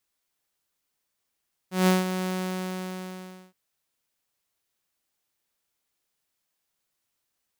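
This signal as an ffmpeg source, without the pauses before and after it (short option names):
-f lavfi -i "aevalsrc='0.2*(2*mod(185*t,1)-1)':d=1.82:s=44100,afade=t=in:d=0.163,afade=t=out:st=0.163:d=0.167:silence=0.316,afade=t=out:st=0.56:d=1.26"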